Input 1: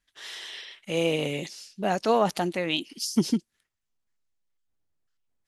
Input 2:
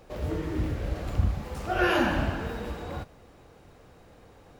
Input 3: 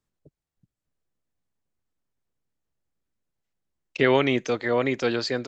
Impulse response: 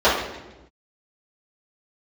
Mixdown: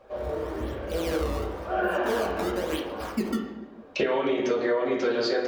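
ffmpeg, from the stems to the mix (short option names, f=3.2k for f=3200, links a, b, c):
-filter_complex "[0:a]equalizer=f=340:t=o:w=0.88:g=7.5,acrusher=samples=16:mix=1:aa=0.000001:lfo=1:lforange=25.6:lforate=0.95,volume=-10dB,asplit=3[a][b][c];[b]volume=-20.5dB[d];[1:a]bass=f=250:g=-8,treble=f=4k:g=-13,flanger=delay=7.3:depth=7:regen=65:speed=1.4:shape=sinusoidal,volume=0.5dB,asplit=2[e][f];[f]volume=-19dB[g];[2:a]bandreject=f=60:t=h:w=6,bandreject=f=120:t=h:w=6,bandreject=f=180:t=h:w=6,bandreject=f=240:t=h:w=6,alimiter=limit=-17.5dB:level=0:latency=1,volume=0.5dB,asplit=2[h][i];[i]volume=-11.5dB[j];[c]apad=whole_len=202783[k];[e][k]sidechaincompress=threshold=-46dB:ratio=8:attack=16:release=369[l];[3:a]atrim=start_sample=2205[m];[d][g][j]amix=inputs=3:normalize=0[n];[n][m]afir=irnorm=-1:irlink=0[o];[a][l][h][o]amix=inputs=4:normalize=0,acompressor=threshold=-22dB:ratio=10"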